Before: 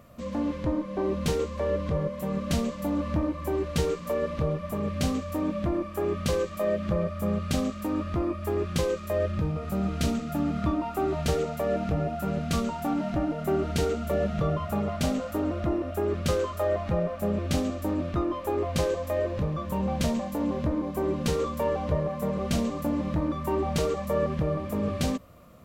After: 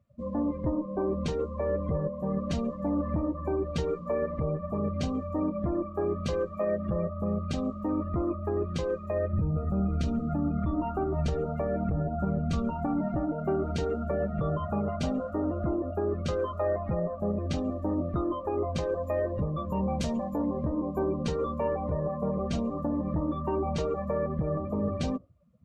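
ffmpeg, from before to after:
-filter_complex "[0:a]asettb=1/sr,asplit=3[a][b][c];[a]atrim=end=9.334[d];[b]atrim=start=9.33:end=13.08,asetpts=PTS-STARTPTS,afade=t=in:d=0.004:c=qsin,afade=t=out:st=3.746:d=0.004:c=qsin,lowshelf=f=170:g=9[e];[c]atrim=start=13.076[f];[d][e]acrossfade=d=0.004:c1=hsin:c2=qsin[g];[g][f]acrossfade=d=0.004:c1=qsin:c2=hsin,asettb=1/sr,asplit=3[h][i][j];[h]atrim=end=19.034[k];[i]atrim=start=19.03:end=21.04,asetpts=PTS-STARTPTS,afade=t=in:d=0.004:c=qsin,afade=t=out:st=2.006:d=0.004:c=qsin,highshelf=f=3.6k:g=4.5[l];[j]atrim=start=21.036[m];[k][l]acrossfade=d=0.004:c1=hsin:c2=qsin[n];[n][m]acrossfade=d=0.004:c1=qsin:c2=hsin,afftdn=nr=27:nf=-38,alimiter=limit=-20dB:level=0:latency=1:release=184,lowpass=8.9k"

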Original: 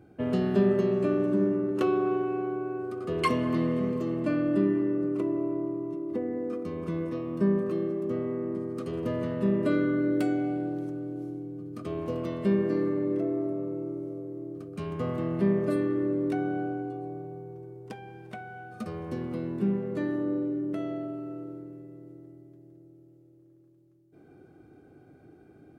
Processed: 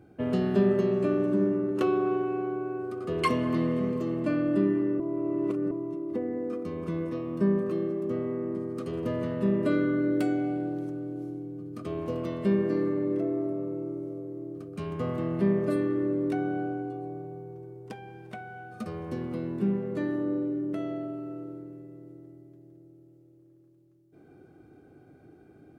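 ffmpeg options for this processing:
-filter_complex "[0:a]asplit=3[a][b][c];[a]atrim=end=5.002[d];[b]atrim=start=4.998:end=5.712,asetpts=PTS-STARTPTS,areverse[e];[c]atrim=start=5.708[f];[d][e]acrossfade=d=0.004:c1=hsin:c2=hsin[g];[g][f]acrossfade=d=0.004:c1=hsin:c2=hsin"

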